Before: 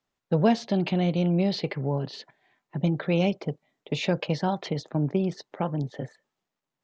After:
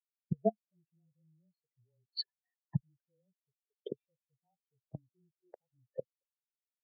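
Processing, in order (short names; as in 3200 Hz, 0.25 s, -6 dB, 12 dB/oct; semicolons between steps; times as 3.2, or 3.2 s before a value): low shelf 430 Hz -8.5 dB; speakerphone echo 0.22 s, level -30 dB; flipped gate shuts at -29 dBFS, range -29 dB; frequency shift -16 Hz; level quantiser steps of 17 dB; spectral expander 4:1; gain +18 dB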